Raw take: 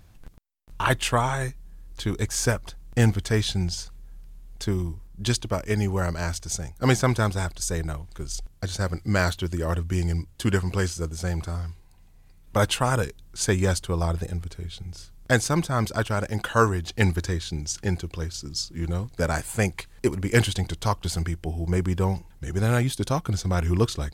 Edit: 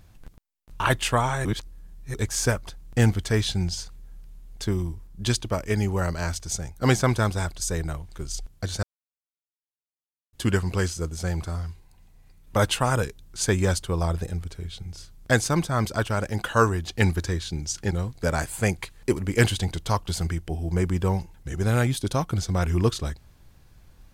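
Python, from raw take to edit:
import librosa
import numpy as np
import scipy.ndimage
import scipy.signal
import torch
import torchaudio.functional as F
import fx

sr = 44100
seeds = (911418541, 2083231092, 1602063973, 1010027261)

y = fx.edit(x, sr, fx.reverse_span(start_s=1.45, length_s=0.69),
    fx.silence(start_s=8.83, length_s=1.5),
    fx.cut(start_s=17.91, length_s=0.96), tone=tone)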